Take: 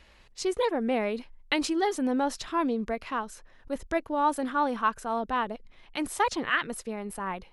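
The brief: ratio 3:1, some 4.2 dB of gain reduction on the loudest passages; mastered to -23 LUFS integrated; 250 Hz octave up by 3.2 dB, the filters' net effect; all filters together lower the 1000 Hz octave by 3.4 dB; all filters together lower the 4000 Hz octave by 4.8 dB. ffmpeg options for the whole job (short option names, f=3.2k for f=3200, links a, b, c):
-af "equalizer=f=250:t=o:g=4,equalizer=f=1k:t=o:g=-4,equalizer=f=4k:t=o:g=-6.5,acompressor=threshold=-27dB:ratio=3,volume=9.5dB"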